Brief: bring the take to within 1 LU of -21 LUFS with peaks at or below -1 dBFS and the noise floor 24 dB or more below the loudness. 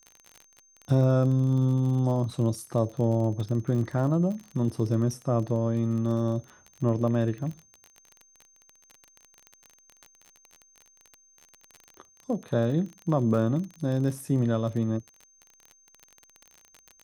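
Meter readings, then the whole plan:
ticks 31/s; steady tone 6300 Hz; tone level -58 dBFS; loudness -27.0 LUFS; peak -11.5 dBFS; loudness target -21.0 LUFS
-> de-click; notch 6300 Hz, Q 30; gain +6 dB

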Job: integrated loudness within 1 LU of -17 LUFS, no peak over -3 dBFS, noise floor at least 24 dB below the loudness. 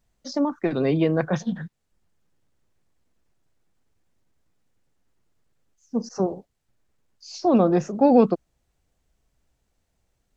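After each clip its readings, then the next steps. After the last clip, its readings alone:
loudness -22.5 LUFS; peak -4.5 dBFS; loudness target -17.0 LUFS
-> gain +5.5 dB; limiter -3 dBFS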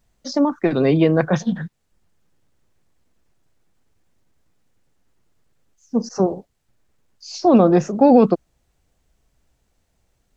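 loudness -17.5 LUFS; peak -3.0 dBFS; noise floor -69 dBFS

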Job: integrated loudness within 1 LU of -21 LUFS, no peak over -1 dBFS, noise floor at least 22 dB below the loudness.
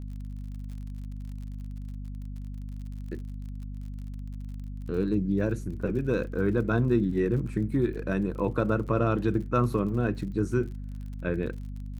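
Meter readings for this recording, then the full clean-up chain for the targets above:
ticks 47/s; hum 50 Hz; harmonics up to 250 Hz; hum level -35 dBFS; loudness -28.5 LUFS; peak -11.5 dBFS; loudness target -21.0 LUFS
-> de-click; de-hum 50 Hz, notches 5; gain +7.5 dB

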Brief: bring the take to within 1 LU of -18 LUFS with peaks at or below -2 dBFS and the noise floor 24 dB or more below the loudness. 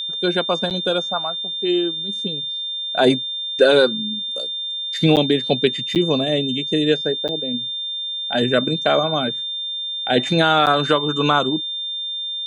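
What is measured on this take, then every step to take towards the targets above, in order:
dropouts 5; longest dropout 8.3 ms; steady tone 3600 Hz; tone level -24 dBFS; loudness -19.5 LUFS; peak -2.5 dBFS; loudness target -18.0 LUFS
-> interpolate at 0.7/5.16/5.95/7.28/10.66, 8.3 ms; notch 3600 Hz, Q 30; gain +1.5 dB; limiter -2 dBFS

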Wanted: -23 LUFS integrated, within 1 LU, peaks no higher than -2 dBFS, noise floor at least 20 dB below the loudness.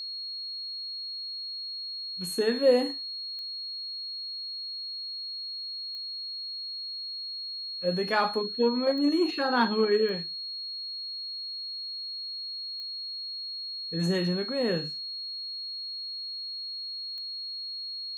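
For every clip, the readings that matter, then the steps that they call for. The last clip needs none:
clicks 6; steady tone 4300 Hz; tone level -34 dBFS; loudness -30.5 LUFS; peak -11.0 dBFS; loudness target -23.0 LUFS
-> de-click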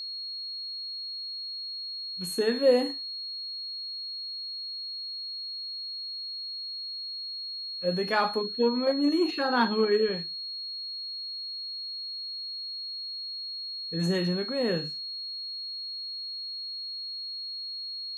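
clicks 0; steady tone 4300 Hz; tone level -34 dBFS
-> notch 4300 Hz, Q 30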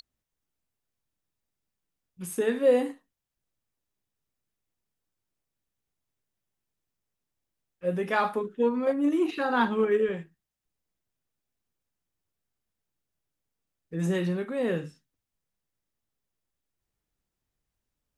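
steady tone none; loudness -27.0 LUFS; peak -11.0 dBFS; loudness target -23.0 LUFS
-> gain +4 dB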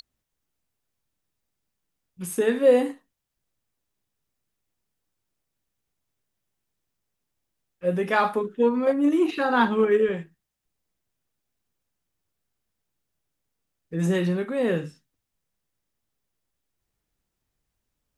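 loudness -23.0 LUFS; peak -7.0 dBFS; noise floor -82 dBFS

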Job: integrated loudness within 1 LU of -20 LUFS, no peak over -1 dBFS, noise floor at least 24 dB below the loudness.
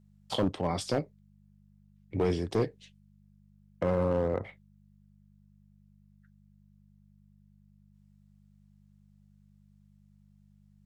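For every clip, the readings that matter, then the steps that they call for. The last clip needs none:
clipped 0.4%; flat tops at -20.5 dBFS; hum 50 Hz; harmonics up to 200 Hz; hum level -60 dBFS; loudness -31.5 LUFS; peak -20.5 dBFS; loudness target -20.0 LUFS
-> clip repair -20.5 dBFS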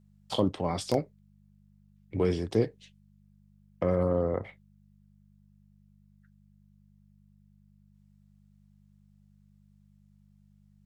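clipped 0.0%; hum 50 Hz; harmonics up to 200 Hz; hum level -60 dBFS
-> de-hum 50 Hz, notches 4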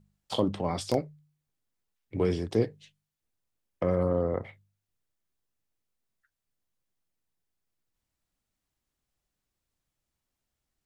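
hum none; loudness -30.0 LUFS; peak -12.0 dBFS; loudness target -20.0 LUFS
-> gain +10 dB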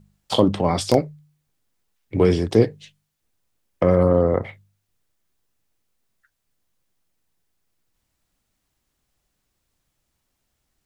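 loudness -20.0 LUFS; peak -2.0 dBFS; noise floor -76 dBFS

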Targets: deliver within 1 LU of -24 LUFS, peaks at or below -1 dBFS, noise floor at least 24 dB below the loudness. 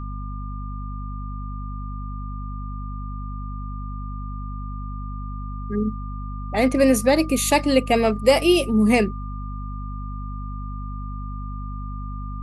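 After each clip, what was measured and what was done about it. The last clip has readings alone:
hum 50 Hz; harmonics up to 250 Hz; hum level -28 dBFS; steady tone 1200 Hz; tone level -38 dBFS; loudness -24.5 LUFS; peak -3.5 dBFS; loudness target -24.0 LUFS
-> notches 50/100/150/200/250 Hz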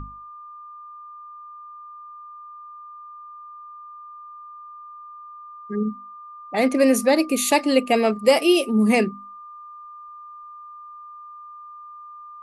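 hum none; steady tone 1200 Hz; tone level -38 dBFS
-> notch 1200 Hz, Q 30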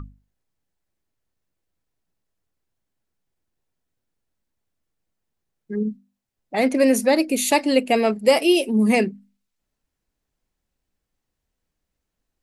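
steady tone none; loudness -19.5 LUFS; peak -4.0 dBFS; loudness target -24.0 LUFS
-> gain -4.5 dB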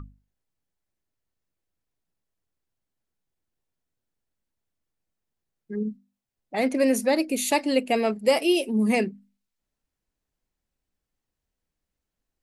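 loudness -24.0 LUFS; peak -8.5 dBFS; noise floor -85 dBFS

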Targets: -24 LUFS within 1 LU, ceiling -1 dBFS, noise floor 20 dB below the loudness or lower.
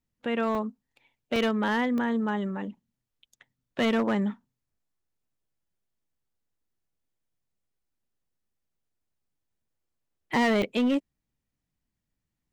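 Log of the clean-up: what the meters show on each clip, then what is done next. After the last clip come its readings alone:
clipped 1.2%; flat tops at -20.0 dBFS; dropouts 4; longest dropout 1.7 ms; loudness -27.5 LUFS; peak -20.0 dBFS; loudness target -24.0 LUFS
-> clip repair -20 dBFS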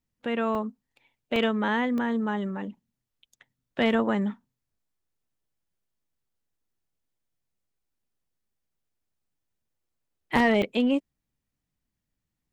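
clipped 0.0%; dropouts 4; longest dropout 1.7 ms
-> interpolate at 0.55/1.36/1.98/10.62, 1.7 ms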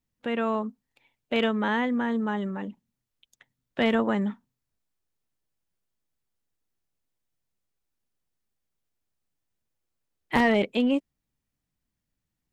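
dropouts 0; loudness -26.5 LUFS; peak -11.0 dBFS; loudness target -24.0 LUFS
-> gain +2.5 dB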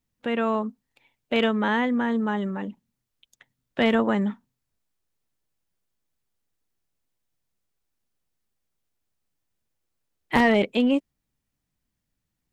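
loudness -24.0 LUFS; peak -8.5 dBFS; noise floor -81 dBFS

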